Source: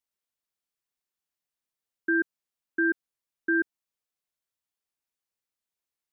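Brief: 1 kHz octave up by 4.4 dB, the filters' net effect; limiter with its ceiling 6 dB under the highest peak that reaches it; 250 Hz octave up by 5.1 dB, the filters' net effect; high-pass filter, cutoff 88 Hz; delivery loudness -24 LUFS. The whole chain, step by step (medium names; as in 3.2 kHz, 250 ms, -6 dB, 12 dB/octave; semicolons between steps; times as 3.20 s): high-pass 88 Hz; peaking EQ 250 Hz +7.5 dB; peaking EQ 1 kHz +8 dB; trim +6.5 dB; peak limiter -12 dBFS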